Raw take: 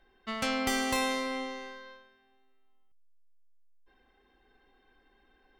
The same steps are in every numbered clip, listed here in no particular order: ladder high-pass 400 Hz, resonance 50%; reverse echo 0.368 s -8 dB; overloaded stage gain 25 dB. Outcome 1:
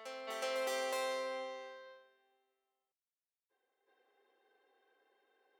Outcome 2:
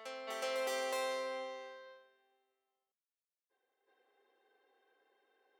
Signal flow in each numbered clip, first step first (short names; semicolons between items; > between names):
overloaded stage > reverse echo > ladder high-pass; reverse echo > overloaded stage > ladder high-pass